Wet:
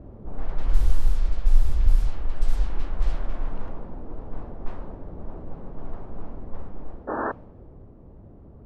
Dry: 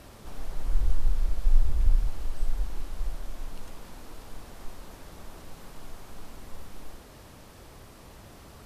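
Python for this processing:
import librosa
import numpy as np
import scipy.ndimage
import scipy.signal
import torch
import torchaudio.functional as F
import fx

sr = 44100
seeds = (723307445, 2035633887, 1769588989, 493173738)

y = fx.spec_paint(x, sr, seeds[0], shape='noise', start_s=7.07, length_s=0.25, low_hz=210.0, high_hz=1800.0, level_db=-31.0)
y = fx.rider(y, sr, range_db=5, speed_s=2.0)
y = fx.env_lowpass(y, sr, base_hz=400.0, full_db=-14.5)
y = y * librosa.db_to_amplitude(4.5)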